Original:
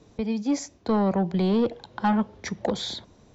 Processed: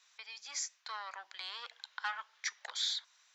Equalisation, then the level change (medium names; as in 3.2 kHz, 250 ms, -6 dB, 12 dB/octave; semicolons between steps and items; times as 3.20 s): dynamic bell 2.5 kHz, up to -3 dB, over -46 dBFS, Q 1.3; high-pass 1.4 kHz 24 dB/octave; 0.0 dB